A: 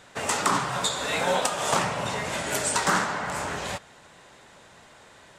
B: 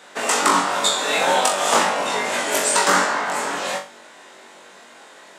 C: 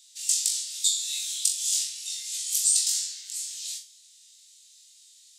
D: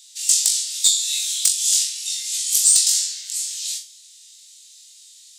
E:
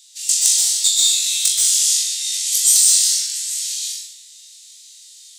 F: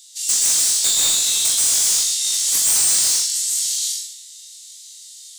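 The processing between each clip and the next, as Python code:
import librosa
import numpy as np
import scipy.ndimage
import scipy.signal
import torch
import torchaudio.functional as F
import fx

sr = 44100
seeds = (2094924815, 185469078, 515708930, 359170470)

y1 = scipy.signal.sosfilt(scipy.signal.butter(4, 230.0, 'highpass', fs=sr, output='sos'), x)
y1 = fx.room_flutter(y1, sr, wall_m=3.6, rt60_s=0.32)
y1 = y1 * librosa.db_to_amplitude(5.0)
y2 = scipy.signal.sosfilt(scipy.signal.cheby2(4, 80, [270.0, 1000.0], 'bandstop', fs=sr, output='sos'), y1)
y3 = fx.peak_eq(y2, sr, hz=190.0, db=-13.5, octaves=2.4)
y3 = np.clip(10.0 ** (14.5 / 20.0) * y3, -1.0, 1.0) / 10.0 ** (14.5 / 20.0)
y3 = y3 * librosa.db_to_amplitude(8.0)
y4 = fx.rev_plate(y3, sr, seeds[0], rt60_s=0.95, hf_ratio=0.8, predelay_ms=115, drr_db=-3.5)
y4 = y4 * librosa.db_to_amplitude(-1.0)
y5 = fx.high_shelf(y4, sr, hz=4400.0, db=6.5)
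y5 = fx.notch(y5, sr, hz=2500.0, q=17.0)
y5 = np.clip(y5, -10.0 ** (-13.0 / 20.0), 10.0 ** (-13.0 / 20.0))
y5 = y5 * librosa.db_to_amplitude(-1.5)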